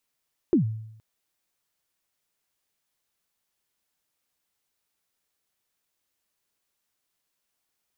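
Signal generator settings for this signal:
synth kick length 0.47 s, from 390 Hz, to 110 Hz, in 113 ms, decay 0.78 s, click off, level −14 dB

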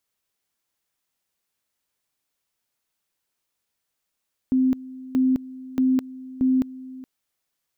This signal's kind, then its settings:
tone at two levels in turn 259 Hz −16 dBFS, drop 19 dB, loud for 0.21 s, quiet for 0.42 s, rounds 4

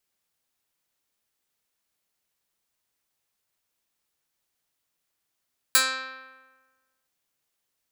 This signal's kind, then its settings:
Karplus-Strong string C4, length 1.32 s, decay 1.36 s, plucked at 0.09, medium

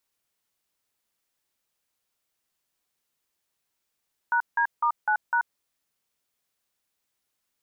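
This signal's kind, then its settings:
touch tones "#D*9#", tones 83 ms, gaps 169 ms, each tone −22.5 dBFS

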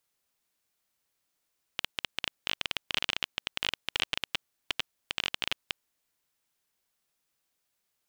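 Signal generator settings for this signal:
Geiger counter clicks 17 per second −10.5 dBFS 3.92 s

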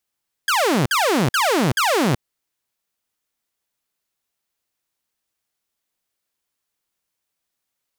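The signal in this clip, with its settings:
repeated falling chirps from 1,700 Hz, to 110 Hz, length 0.38 s saw, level −13 dB, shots 4, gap 0.05 s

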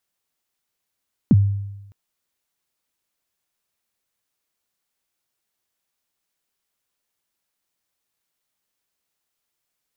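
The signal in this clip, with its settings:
synth kick length 0.61 s, from 280 Hz, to 100 Hz, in 36 ms, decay 0.99 s, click off, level −7.5 dB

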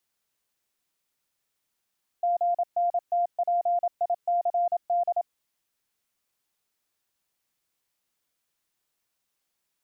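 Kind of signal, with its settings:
Morse code "GNTPICD" 27 words per minute 698 Hz −21 dBFS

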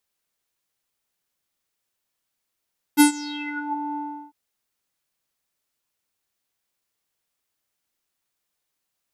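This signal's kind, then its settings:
subtractive voice square D4 12 dB per octave, low-pass 800 Hz, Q 9, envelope 4 octaves, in 0.78 s, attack 35 ms, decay 0.11 s, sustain −22 dB, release 0.36 s, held 0.99 s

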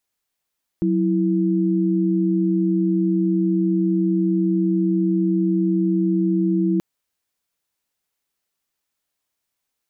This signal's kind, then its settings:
held notes F#3/E4 sine, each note −19 dBFS 5.98 s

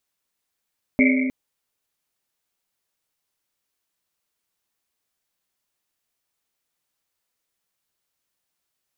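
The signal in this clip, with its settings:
drum after Risset length 0.31 s, pitch 260 Hz, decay 2.28 s, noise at 2,200 Hz, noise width 270 Hz, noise 30%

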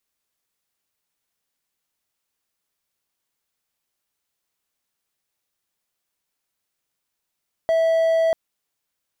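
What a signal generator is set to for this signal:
tone triangle 654 Hz −13.5 dBFS 0.64 s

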